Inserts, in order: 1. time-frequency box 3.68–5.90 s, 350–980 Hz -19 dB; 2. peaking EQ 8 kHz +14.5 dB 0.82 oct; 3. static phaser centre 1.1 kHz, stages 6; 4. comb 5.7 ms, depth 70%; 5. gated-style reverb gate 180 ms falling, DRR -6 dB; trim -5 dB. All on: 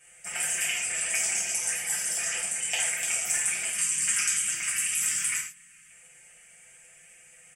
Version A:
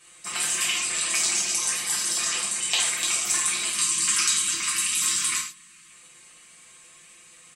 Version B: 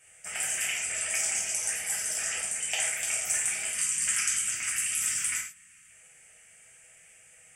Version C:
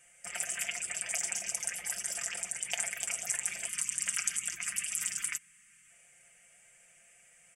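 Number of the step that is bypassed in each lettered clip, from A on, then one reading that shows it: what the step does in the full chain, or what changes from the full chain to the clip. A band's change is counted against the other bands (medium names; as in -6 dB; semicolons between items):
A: 3, loudness change +3.5 LU; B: 4, loudness change -1.5 LU; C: 5, 500 Hz band +2.5 dB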